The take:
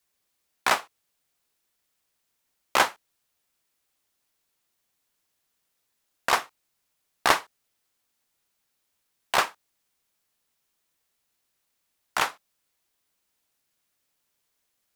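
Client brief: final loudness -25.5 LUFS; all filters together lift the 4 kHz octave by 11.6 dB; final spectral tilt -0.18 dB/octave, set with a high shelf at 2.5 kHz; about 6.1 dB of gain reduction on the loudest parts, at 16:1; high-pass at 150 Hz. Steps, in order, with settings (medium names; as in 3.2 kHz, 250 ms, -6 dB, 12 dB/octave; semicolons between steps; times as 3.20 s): high-pass 150 Hz; treble shelf 2.5 kHz +6.5 dB; peaking EQ 4 kHz +9 dB; compression 16:1, threshold -16 dBFS; trim -1 dB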